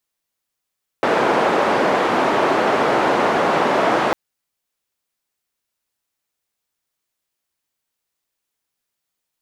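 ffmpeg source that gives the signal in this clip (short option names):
-f lavfi -i "anoisesrc=c=white:d=3.1:r=44100:seed=1,highpass=f=290,lowpass=f=890,volume=2.9dB"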